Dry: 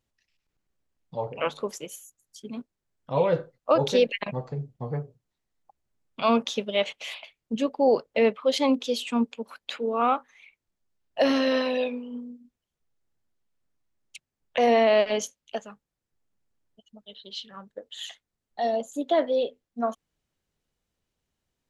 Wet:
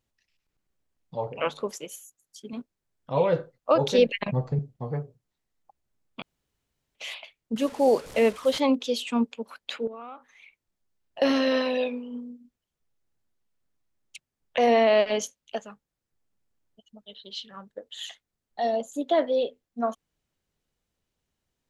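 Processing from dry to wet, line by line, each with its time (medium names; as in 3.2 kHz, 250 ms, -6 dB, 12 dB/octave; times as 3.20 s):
1.73–2.53 s: bass shelf 99 Hz -11 dB
3.98–4.59 s: bass shelf 190 Hz +11.5 dB
6.22–6.95 s: room tone
7.56–8.60 s: one-bit delta coder 64 kbps, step -37 dBFS
9.87–11.22 s: compression 16:1, threshold -36 dBFS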